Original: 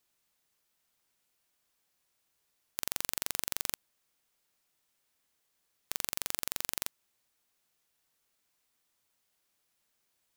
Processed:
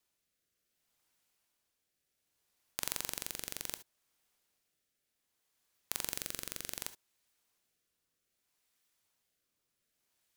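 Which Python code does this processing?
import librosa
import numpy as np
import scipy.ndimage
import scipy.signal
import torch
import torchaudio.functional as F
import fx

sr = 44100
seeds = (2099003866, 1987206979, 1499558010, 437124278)

y = fx.rotary(x, sr, hz=0.65)
y = fx.rev_gated(y, sr, seeds[0], gate_ms=90, shape='rising', drr_db=12.0)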